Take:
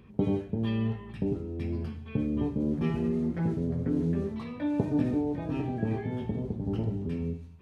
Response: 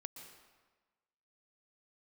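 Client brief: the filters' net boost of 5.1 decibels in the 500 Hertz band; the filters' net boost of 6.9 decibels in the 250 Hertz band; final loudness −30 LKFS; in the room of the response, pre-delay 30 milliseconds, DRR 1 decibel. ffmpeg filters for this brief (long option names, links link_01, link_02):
-filter_complex "[0:a]equalizer=frequency=250:width_type=o:gain=7.5,equalizer=frequency=500:width_type=o:gain=3.5,asplit=2[link_01][link_02];[1:a]atrim=start_sample=2205,adelay=30[link_03];[link_02][link_03]afir=irnorm=-1:irlink=0,volume=3dB[link_04];[link_01][link_04]amix=inputs=2:normalize=0,volume=-8dB"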